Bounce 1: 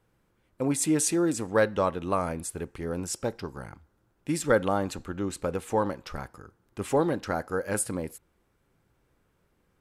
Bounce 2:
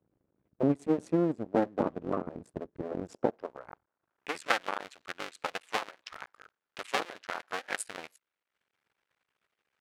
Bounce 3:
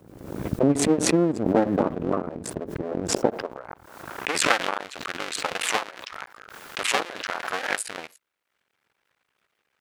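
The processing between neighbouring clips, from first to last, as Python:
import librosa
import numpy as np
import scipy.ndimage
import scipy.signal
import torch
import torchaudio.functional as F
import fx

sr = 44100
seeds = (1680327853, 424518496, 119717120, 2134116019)

y1 = fx.cycle_switch(x, sr, every=2, mode='muted')
y1 = fx.transient(y1, sr, attack_db=8, sustain_db=-7)
y1 = fx.filter_sweep_bandpass(y1, sr, from_hz=270.0, to_hz=2600.0, start_s=2.87, end_s=4.57, q=0.88)
y2 = fx.pre_swell(y1, sr, db_per_s=56.0)
y2 = F.gain(torch.from_numpy(y2), 6.0).numpy()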